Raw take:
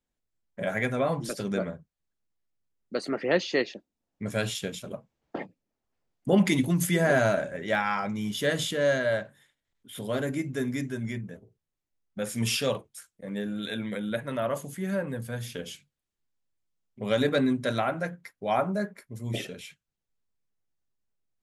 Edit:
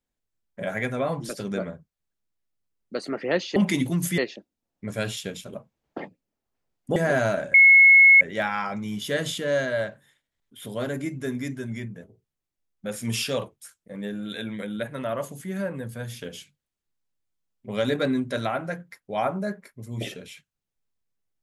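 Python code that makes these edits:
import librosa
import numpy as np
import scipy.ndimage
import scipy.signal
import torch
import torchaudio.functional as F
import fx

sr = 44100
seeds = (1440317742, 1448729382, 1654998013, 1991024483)

y = fx.edit(x, sr, fx.move(start_s=6.34, length_s=0.62, to_s=3.56),
    fx.insert_tone(at_s=7.54, length_s=0.67, hz=2180.0, db=-9.5), tone=tone)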